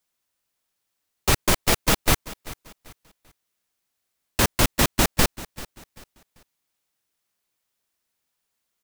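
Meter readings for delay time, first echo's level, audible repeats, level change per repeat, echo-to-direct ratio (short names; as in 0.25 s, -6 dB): 0.39 s, -18.0 dB, 2, -10.0 dB, -17.5 dB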